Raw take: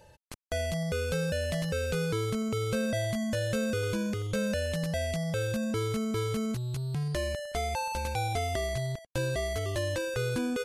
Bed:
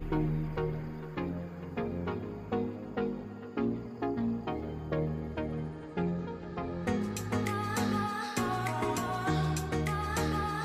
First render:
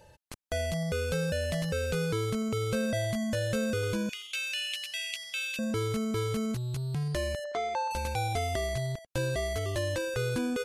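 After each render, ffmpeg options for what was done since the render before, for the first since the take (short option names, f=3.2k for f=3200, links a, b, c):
-filter_complex "[0:a]asettb=1/sr,asplit=3[a][b][c];[a]atrim=end=4.094[d];[b]atrim=start=4.09:end=5.59,asetpts=PTS-STARTPTS,afade=t=in:d=0.004:c=qsin,afade=t=out:st=1.496:d=0.004:c=qsin,highpass=f=2.7k:t=q:w=4.6[e];[c]atrim=start=5.586[f];[d][e]acrossfade=d=0.004:c1=hsin:c2=qsin[g];[g][f]acrossfade=d=0.004:c1=qsin:c2=hsin,asettb=1/sr,asplit=3[h][i][j];[h]atrim=end=7.444[k];[i]atrim=start=7.44:end=7.91,asetpts=PTS-STARTPTS,afade=t=in:d=0.004:c=qsin,afade=t=out:st=0.466:d=0.004:c=qsin,highpass=310,equalizer=f=340:t=q:w=4:g=5,equalizer=f=580:t=q:w=4:g=3,equalizer=f=1.1k:t=q:w=4:g=8,equalizer=f=2.8k:t=q:w=4:g=-8,equalizer=f=5k:t=q:w=4:g=-7,lowpass=f=5.7k:w=0.5412,lowpass=f=5.7k:w=1.3066[l];[j]atrim=start=7.906[m];[k][l]acrossfade=d=0.004:c1=hsin:c2=qsin[n];[n][m]acrossfade=d=0.004:c1=qsin:c2=hsin"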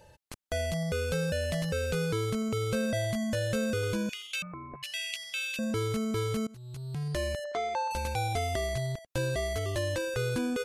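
-filter_complex "[0:a]asettb=1/sr,asplit=3[a][b][c];[a]atrim=end=4.424[d];[b]atrim=start=4.42:end=4.83,asetpts=PTS-STARTPTS,afade=t=in:d=0.004:c=qsin,afade=t=out:st=0.406:d=0.004:c=qsin,lowpass=f=2.4k:t=q:w=0.5098,lowpass=f=2.4k:t=q:w=0.6013,lowpass=f=2.4k:t=q:w=0.9,lowpass=f=2.4k:t=q:w=2.563,afreqshift=-2800[e];[c]atrim=start=4.826[f];[d][e]acrossfade=d=0.004:c1=hsin:c2=qsin[g];[g][f]acrossfade=d=0.004:c1=qsin:c2=hsin,asplit=2[h][i];[h]atrim=end=6.47,asetpts=PTS-STARTPTS,afade=t=out:st=6.466:d=0.004:c=hsin:silence=0.0630957[j];[i]atrim=start=6.47,asetpts=PTS-STARTPTS,afade=t=in:d=0.74:silence=0.0630957[k];[j][k]concat=n=2:v=0:a=1"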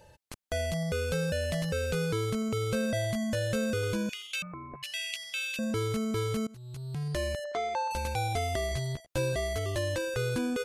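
-filter_complex "[0:a]asettb=1/sr,asplit=3[a][b][c];[a]atrim=end=8.704[d];[b]atrim=start=8.7:end=9.33,asetpts=PTS-STARTPTS,afade=t=in:d=0.004:c=qsin,afade=t=out:st=0.626:d=0.004:c=qsin,asplit=2[e][f];[f]adelay=13,volume=-5.5dB[g];[e][g]amix=inputs=2:normalize=0,atrim=end_sample=27783[h];[c]atrim=start=9.326[i];[d][h]acrossfade=d=0.004:c1=hsin:c2=qsin[j];[j][i]acrossfade=d=0.004:c1=qsin:c2=hsin"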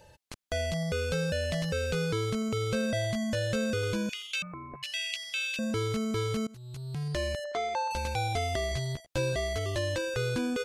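-filter_complex "[0:a]acrossover=split=7900[a][b];[b]acompressor=threshold=-54dB:ratio=4:attack=1:release=60[c];[a][c]amix=inputs=2:normalize=0,equalizer=f=4.3k:t=o:w=2:g=2.5"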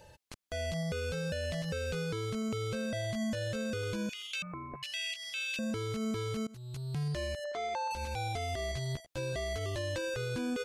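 -af "alimiter=level_in=3.5dB:limit=-24dB:level=0:latency=1:release=134,volume=-3.5dB"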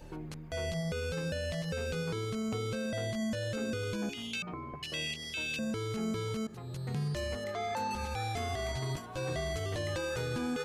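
-filter_complex "[1:a]volume=-12.5dB[a];[0:a][a]amix=inputs=2:normalize=0"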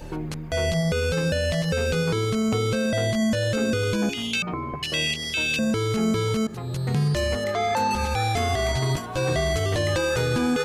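-af "volume=11.5dB"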